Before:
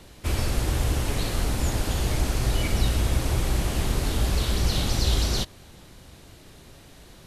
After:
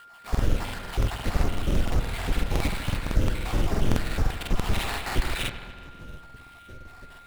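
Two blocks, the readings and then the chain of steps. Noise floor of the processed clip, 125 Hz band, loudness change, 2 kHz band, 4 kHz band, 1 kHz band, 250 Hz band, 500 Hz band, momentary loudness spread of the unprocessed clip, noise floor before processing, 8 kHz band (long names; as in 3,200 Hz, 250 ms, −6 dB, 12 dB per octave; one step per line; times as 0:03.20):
−49 dBFS, −3.5 dB, −3.0 dB, +1.0 dB, −5.0 dB, +0.5 dB, −1.0 dB, −1.5 dB, 3 LU, −49 dBFS, −8.5 dB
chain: time-frequency cells dropped at random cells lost 70%
low-shelf EQ 340 Hz +4.5 dB
in parallel at −3 dB: brickwall limiter −22.5 dBFS, peak gain reduction 14 dB
on the sum: sample-rate reduction 6,200 Hz, jitter 20%
frequency shifter −24 Hz
steady tone 1,400 Hz −45 dBFS
on a send: delay with a low-pass on its return 74 ms, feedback 74%, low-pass 3,500 Hz, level −9 dB
on the sum: regular buffer underruns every 0.17 s, samples 2,048, repeat, from 0:00.30
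highs frequency-modulated by the lows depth 0.54 ms
level −2 dB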